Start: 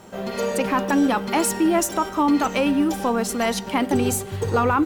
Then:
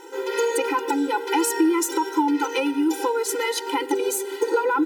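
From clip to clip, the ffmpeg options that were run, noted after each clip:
ffmpeg -i in.wav -af "acompressor=threshold=-22dB:ratio=6,afftfilt=real='re*eq(mod(floor(b*sr/1024/260),2),1)':imag='im*eq(mod(floor(b*sr/1024/260),2),1)':win_size=1024:overlap=0.75,volume=6.5dB" out.wav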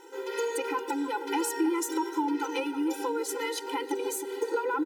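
ffmpeg -i in.wav -filter_complex "[0:a]asplit=2[link_01][link_02];[link_02]adelay=314,lowpass=frequency=1000:poles=1,volume=-8.5dB,asplit=2[link_03][link_04];[link_04]adelay=314,lowpass=frequency=1000:poles=1,volume=0.49,asplit=2[link_05][link_06];[link_06]adelay=314,lowpass=frequency=1000:poles=1,volume=0.49,asplit=2[link_07][link_08];[link_08]adelay=314,lowpass=frequency=1000:poles=1,volume=0.49,asplit=2[link_09][link_10];[link_10]adelay=314,lowpass=frequency=1000:poles=1,volume=0.49,asplit=2[link_11][link_12];[link_12]adelay=314,lowpass=frequency=1000:poles=1,volume=0.49[link_13];[link_01][link_03][link_05][link_07][link_09][link_11][link_13]amix=inputs=7:normalize=0,volume=-8dB" out.wav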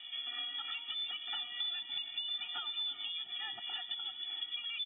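ffmpeg -i in.wav -filter_complex "[0:a]acrossover=split=150|3000[link_01][link_02][link_03];[link_02]acompressor=threshold=-43dB:ratio=6[link_04];[link_01][link_04][link_03]amix=inputs=3:normalize=0,lowpass=frequency=3200:width_type=q:width=0.5098,lowpass=frequency=3200:width_type=q:width=0.6013,lowpass=frequency=3200:width_type=q:width=0.9,lowpass=frequency=3200:width_type=q:width=2.563,afreqshift=-3800,highshelf=frequency=2300:gain=11.5,volume=-4.5dB" out.wav

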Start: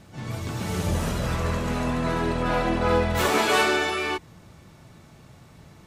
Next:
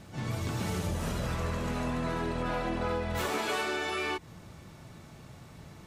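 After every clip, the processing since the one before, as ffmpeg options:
ffmpeg -i in.wav -af "acompressor=threshold=-29dB:ratio=6" out.wav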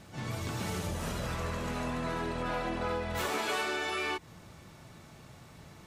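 ffmpeg -i in.wav -af "lowshelf=frequency=430:gain=-4" out.wav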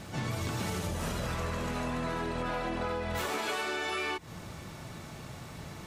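ffmpeg -i in.wav -af "acompressor=threshold=-39dB:ratio=5,volume=8dB" out.wav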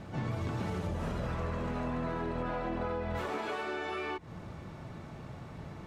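ffmpeg -i in.wav -af "lowpass=frequency=1200:poles=1" out.wav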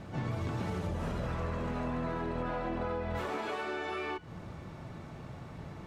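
ffmpeg -i in.wav -af "bandreject=frequency=211.2:width_type=h:width=4,bandreject=frequency=422.4:width_type=h:width=4,bandreject=frequency=633.6:width_type=h:width=4,bandreject=frequency=844.8:width_type=h:width=4,bandreject=frequency=1056:width_type=h:width=4,bandreject=frequency=1267.2:width_type=h:width=4,bandreject=frequency=1478.4:width_type=h:width=4,bandreject=frequency=1689.6:width_type=h:width=4,bandreject=frequency=1900.8:width_type=h:width=4,bandreject=frequency=2112:width_type=h:width=4,bandreject=frequency=2323.2:width_type=h:width=4,bandreject=frequency=2534.4:width_type=h:width=4,bandreject=frequency=2745.6:width_type=h:width=4,bandreject=frequency=2956.8:width_type=h:width=4,bandreject=frequency=3168:width_type=h:width=4,bandreject=frequency=3379.2:width_type=h:width=4,bandreject=frequency=3590.4:width_type=h:width=4,bandreject=frequency=3801.6:width_type=h:width=4,bandreject=frequency=4012.8:width_type=h:width=4,bandreject=frequency=4224:width_type=h:width=4,bandreject=frequency=4435.2:width_type=h:width=4,bandreject=frequency=4646.4:width_type=h:width=4,bandreject=frequency=4857.6:width_type=h:width=4,bandreject=frequency=5068.8:width_type=h:width=4,bandreject=frequency=5280:width_type=h:width=4,bandreject=frequency=5491.2:width_type=h:width=4,bandreject=frequency=5702.4:width_type=h:width=4,bandreject=frequency=5913.6:width_type=h:width=4,bandreject=frequency=6124.8:width_type=h:width=4,bandreject=frequency=6336:width_type=h:width=4,bandreject=frequency=6547.2:width_type=h:width=4,bandreject=frequency=6758.4:width_type=h:width=4,bandreject=frequency=6969.6:width_type=h:width=4,bandreject=frequency=7180.8:width_type=h:width=4,bandreject=frequency=7392:width_type=h:width=4" out.wav

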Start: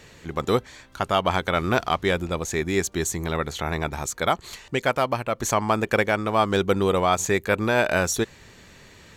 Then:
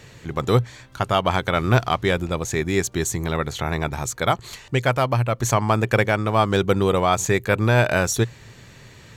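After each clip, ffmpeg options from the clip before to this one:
ffmpeg -i in.wav -af "equalizer=frequency=120:width=4:gain=13.5,volume=1.5dB" out.wav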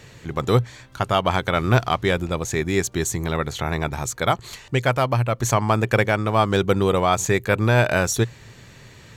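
ffmpeg -i in.wav -af anull out.wav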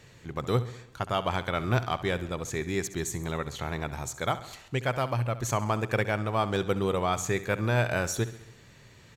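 ffmpeg -i in.wav -af "aecho=1:1:67|134|201|268|335|402:0.178|0.101|0.0578|0.0329|0.0188|0.0107,volume=-8.5dB" out.wav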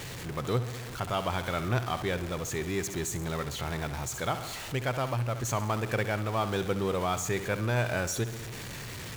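ffmpeg -i in.wav -af "aeval=exprs='val(0)+0.5*0.0282*sgn(val(0))':channel_layout=same,volume=-4dB" out.wav

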